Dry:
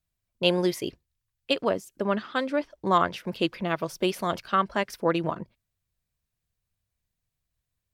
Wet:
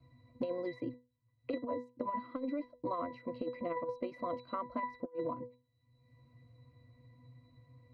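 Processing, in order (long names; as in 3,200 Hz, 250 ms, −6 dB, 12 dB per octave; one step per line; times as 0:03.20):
high-shelf EQ 3,000 Hz −9 dB
resonances in every octave B, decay 0.23 s
hollow resonant body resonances 320/700/2,400/3,600 Hz, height 9 dB, ringing for 60 ms
compressor whose output falls as the input rises −41 dBFS, ratio −0.5
dynamic equaliser 140 Hz, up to −7 dB, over −58 dBFS, Q 0.71
multiband upward and downward compressor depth 100%
level +6.5 dB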